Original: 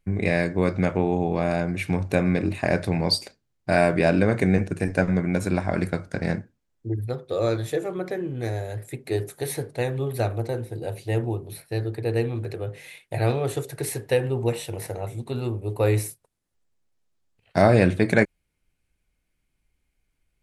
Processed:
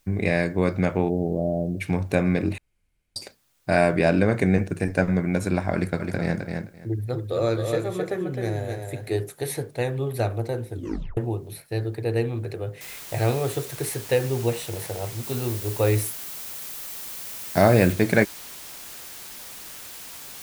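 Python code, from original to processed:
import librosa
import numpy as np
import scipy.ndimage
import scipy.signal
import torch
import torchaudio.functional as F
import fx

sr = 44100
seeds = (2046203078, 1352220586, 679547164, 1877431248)

y = fx.cheby1_lowpass(x, sr, hz=640.0, order=4, at=(1.08, 1.8), fade=0.02)
y = fx.echo_feedback(y, sr, ms=261, feedback_pct=16, wet_db=-5, at=(5.99, 9.11), fade=0.02)
y = fx.noise_floor_step(y, sr, seeds[0], at_s=12.81, before_db=-68, after_db=-40, tilt_db=0.0)
y = fx.high_shelf(y, sr, hz=10000.0, db=6.5, at=(15.23, 17.93))
y = fx.edit(y, sr, fx.room_tone_fill(start_s=2.58, length_s=0.58),
    fx.tape_stop(start_s=10.72, length_s=0.45), tone=tone)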